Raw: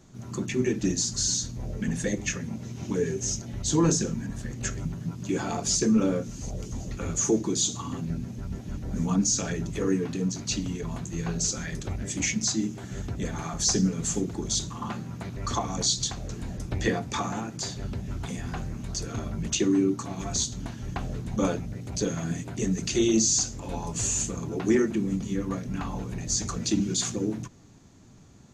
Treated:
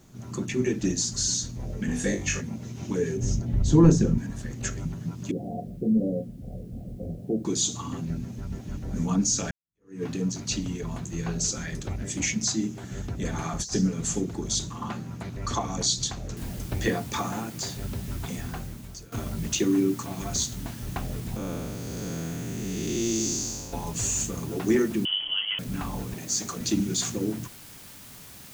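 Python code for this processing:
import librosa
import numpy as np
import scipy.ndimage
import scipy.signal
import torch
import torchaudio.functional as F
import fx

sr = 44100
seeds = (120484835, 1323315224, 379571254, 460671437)

y = fx.room_flutter(x, sr, wall_m=3.5, rt60_s=0.29, at=(1.87, 2.4), fade=0.02)
y = fx.tilt_eq(y, sr, slope=-3.0, at=(3.17, 4.18))
y = fx.cheby_ripple(y, sr, hz=750.0, ripple_db=6, at=(5.31, 7.45))
y = fx.over_compress(y, sr, threshold_db=-29.0, ratio=-0.5, at=(13.25, 13.74))
y = fx.noise_floor_step(y, sr, seeds[0], at_s=16.37, before_db=-69, after_db=-47, tilt_db=0.0)
y = fx.spec_blur(y, sr, span_ms=391.0, at=(21.36, 23.73))
y = fx.freq_invert(y, sr, carrier_hz=3200, at=(25.05, 25.59))
y = fx.highpass(y, sr, hz=190.0, slope=12, at=(26.14, 26.61))
y = fx.edit(y, sr, fx.fade_in_span(start_s=9.51, length_s=0.52, curve='exp'),
    fx.fade_out_to(start_s=18.38, length_s=0.74, floor_db=-17.0), tone=tone)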